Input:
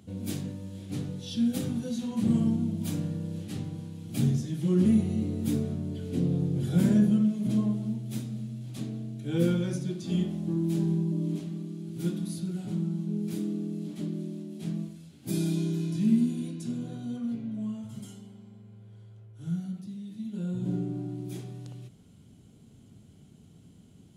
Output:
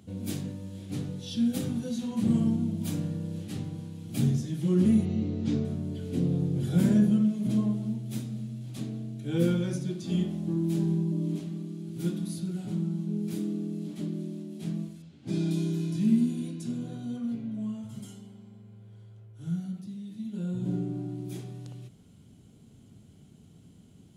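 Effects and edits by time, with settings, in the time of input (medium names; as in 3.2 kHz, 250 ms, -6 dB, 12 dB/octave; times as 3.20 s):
5.05–5.65 s: low-pass 5.8 kHz 24 dB/octave
15.02–15.51 s: distance through air 110 m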